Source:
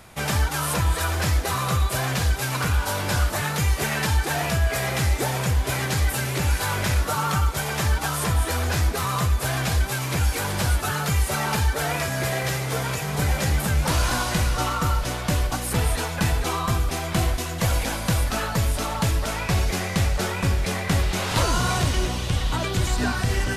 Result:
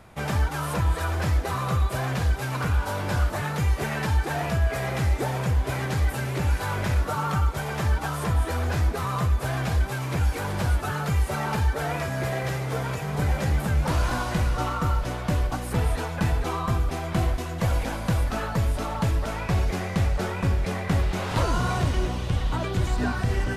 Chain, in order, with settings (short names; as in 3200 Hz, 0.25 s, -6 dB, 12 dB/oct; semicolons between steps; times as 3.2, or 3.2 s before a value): high shelf 2500 Hz -11 dB; gain -1 dB